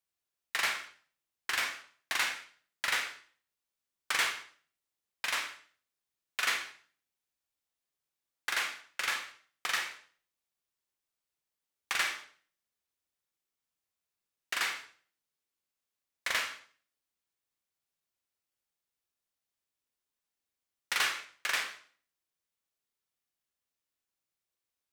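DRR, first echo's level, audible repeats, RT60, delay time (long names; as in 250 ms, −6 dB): 4.5 dB, no echo audible, no echo audible, 0.45 s, no echo audible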